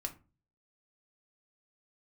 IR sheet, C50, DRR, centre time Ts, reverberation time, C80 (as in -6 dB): 15.0 dB, 3.5 dB, 7 ms, 0.35 s, 21.5 dB